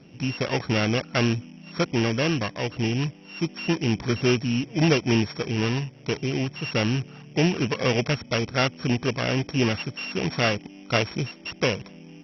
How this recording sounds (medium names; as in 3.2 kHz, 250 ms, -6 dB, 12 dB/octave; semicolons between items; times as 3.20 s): a buzz of ramps at a fixed pitch in blocks of 16 samples; MP2